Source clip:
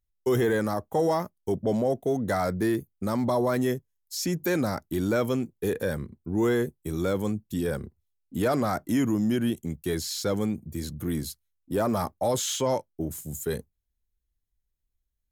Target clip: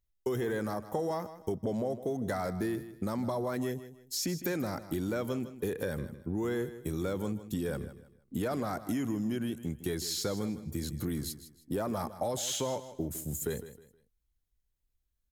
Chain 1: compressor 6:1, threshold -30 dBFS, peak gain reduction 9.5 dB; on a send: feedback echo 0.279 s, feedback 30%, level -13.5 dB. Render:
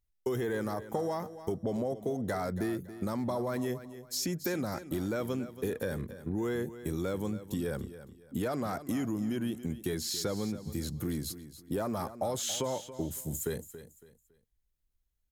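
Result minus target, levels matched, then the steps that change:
echo 0.122 s late
change: feedback echo 0.157 s, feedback 30%, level -13.5 dB

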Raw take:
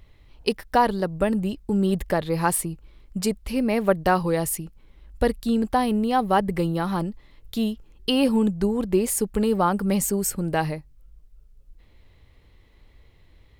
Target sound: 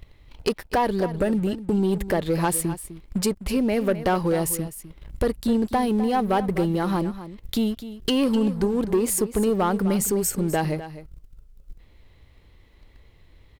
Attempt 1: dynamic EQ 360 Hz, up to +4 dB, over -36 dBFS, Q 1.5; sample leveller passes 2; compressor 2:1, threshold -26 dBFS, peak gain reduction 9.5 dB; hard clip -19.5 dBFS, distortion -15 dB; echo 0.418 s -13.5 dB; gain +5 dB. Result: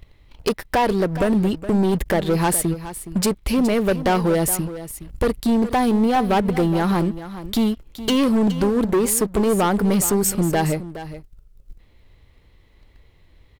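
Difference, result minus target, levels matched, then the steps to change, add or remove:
echo 0.164 s late; compressor: peak gain reduction -5 dB
change: compressor 2:1, threshold -36 dBFS, peak gain reduction 14.5 dB; change: echo 0.254 s -13.5 dB

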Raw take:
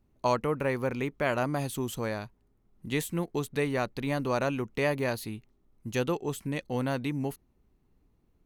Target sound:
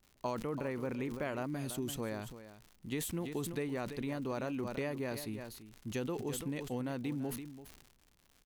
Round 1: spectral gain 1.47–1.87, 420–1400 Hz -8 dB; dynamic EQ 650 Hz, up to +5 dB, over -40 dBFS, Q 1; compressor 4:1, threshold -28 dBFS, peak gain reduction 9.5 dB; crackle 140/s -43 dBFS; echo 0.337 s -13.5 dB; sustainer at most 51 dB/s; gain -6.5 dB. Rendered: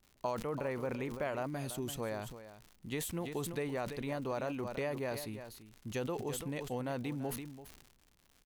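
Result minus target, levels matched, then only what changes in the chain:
250 Hz band -2.5 dB
change: dynamic EQ 280 Hz, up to +5 dB, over -40 dBFS, Q 1

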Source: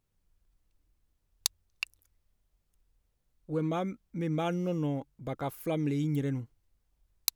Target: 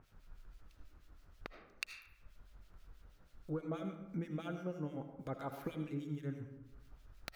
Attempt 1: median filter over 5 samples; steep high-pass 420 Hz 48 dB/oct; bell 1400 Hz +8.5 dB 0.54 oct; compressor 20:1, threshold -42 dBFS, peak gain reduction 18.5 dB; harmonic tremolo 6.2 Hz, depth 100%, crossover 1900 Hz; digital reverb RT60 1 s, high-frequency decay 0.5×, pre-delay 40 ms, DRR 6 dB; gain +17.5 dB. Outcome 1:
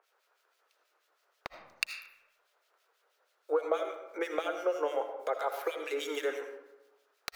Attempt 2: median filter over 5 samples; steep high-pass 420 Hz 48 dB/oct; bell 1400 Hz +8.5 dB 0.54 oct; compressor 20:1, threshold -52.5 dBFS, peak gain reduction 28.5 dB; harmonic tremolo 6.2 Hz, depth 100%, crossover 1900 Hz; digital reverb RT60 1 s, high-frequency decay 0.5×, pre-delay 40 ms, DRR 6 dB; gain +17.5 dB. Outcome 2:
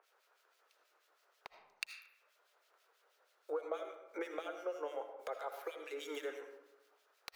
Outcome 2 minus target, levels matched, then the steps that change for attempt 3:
500 Hz band +5.0 dB
remove: steep high-pass 420 Hz 48 dB/oct

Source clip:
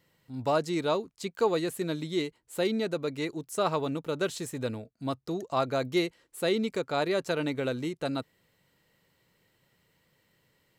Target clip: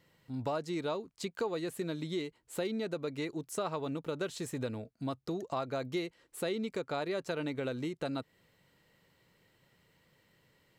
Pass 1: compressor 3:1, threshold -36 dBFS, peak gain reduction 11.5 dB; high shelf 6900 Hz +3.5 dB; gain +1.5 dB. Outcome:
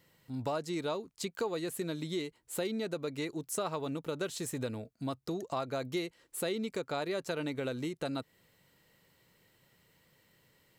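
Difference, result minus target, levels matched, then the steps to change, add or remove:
8000 Hz band +5.0 dB
change: high shelf 6900 Hz -5.5 dB

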